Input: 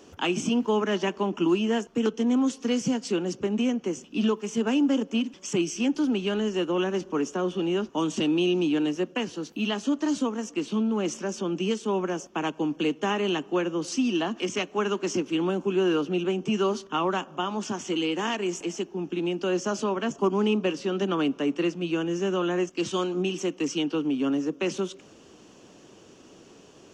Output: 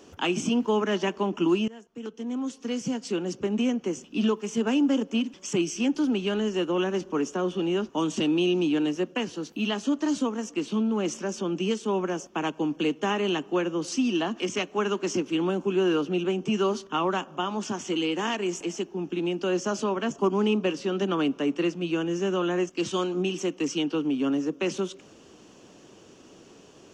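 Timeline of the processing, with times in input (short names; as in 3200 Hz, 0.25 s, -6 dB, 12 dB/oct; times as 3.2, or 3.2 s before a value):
1.68–3.56 fade in, from -23 dB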